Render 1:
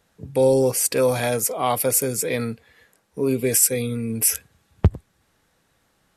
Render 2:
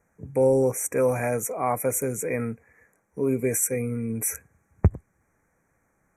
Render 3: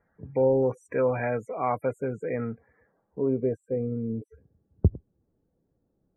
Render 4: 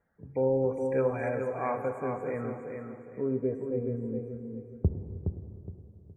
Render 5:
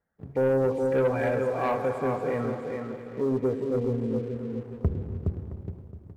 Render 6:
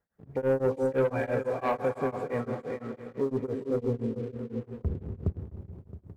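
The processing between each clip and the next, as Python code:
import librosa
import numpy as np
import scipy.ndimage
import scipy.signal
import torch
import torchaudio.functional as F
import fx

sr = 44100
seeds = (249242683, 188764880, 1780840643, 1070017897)

y1 = scipy.signal.sosfilt(scipy.signal.cheby1(5, 1.0, [2400.0, 5800.0], 'bandstop', fs=sr, output='sos'), x)
y1 = fx.high_shelf(y1, sr, hz=6000.0, db=-6.5)
y1 = F.gain(torch.from_numpy(y1), -2.5).numpy()
y2 = fx.spec_topn(y1, sr, count=64)
y2 = fx.filter_sweep_lowpass(y2, sr, from_hz=2000.0, to_hz=400.0, start_s=1.72, end_s=4.47, q=1.2)
y2 = F.gain(torch.from_numpy(y2), -2.5).numpy()
y3 = fx.echo_feedback(y2, sr, ms=417, feedback_pct=28, wet_db=-6.0)
y3 = fx.rev_plate(y3, sr, seeds[0], rt60_s=2.9, hf_ratio=0.9, predelay_ms=0, drr_db=7.5)
y3 = F.gain(torch.from_numpy(y3), -5.0).numpy()
y4 = fx.leveller(y3, sr, passes=2)
y4 = y4 + 10.0 ** (-16.0 / 20.0) * np.pad(y4, (int(668 * sr / 1000.0), 0))[:len(y4)]
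y4 = F.gain(torch.from_numpy(y4), -2.0).numpy()
y5 = y4 * np.abs(np.cos(np.pi * 5.9 * np.arange(len(y4)) / sr))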